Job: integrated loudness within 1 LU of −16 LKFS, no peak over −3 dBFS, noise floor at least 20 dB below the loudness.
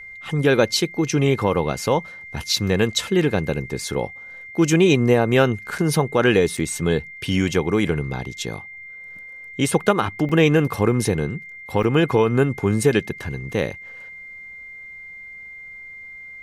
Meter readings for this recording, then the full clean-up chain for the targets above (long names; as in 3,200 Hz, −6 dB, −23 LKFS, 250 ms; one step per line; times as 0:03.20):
number of dropouts 4; longest dropout 4.8 ms; interfering tone 2,100 Hz; level of the tone −36 dBFS; integrated loudness −20.5 LKFS; sample peak −5.0 dBFS; target loudness −16.0 LKFS
→ repair the gap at 0:05.78/0:06.57/0:10.29/0:11.83, 4.8 ms
notch filter 2,100 Hz, Q 30
level +4.5 dB
brickwall limiter −3 dBFS